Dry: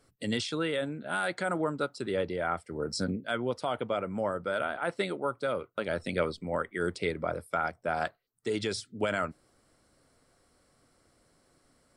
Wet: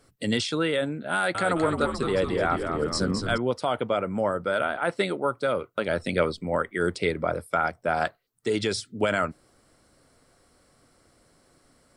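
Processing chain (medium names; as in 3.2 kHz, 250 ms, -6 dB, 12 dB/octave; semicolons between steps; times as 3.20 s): 1.13–3.38 s: frequency-shifting echo 215 ms, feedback 56%, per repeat -83 Hz, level -6 dB; trim +5.5 dB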